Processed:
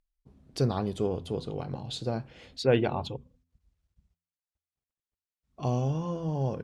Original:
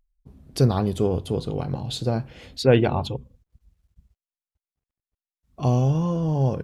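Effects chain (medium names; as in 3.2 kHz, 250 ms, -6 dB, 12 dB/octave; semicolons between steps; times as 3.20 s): low-pass 8.4 kHz 12 dB/octave; bass shelf 140 Hz -6 dB; de-hum 84.6 Hz, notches 3; trim -5.5 dB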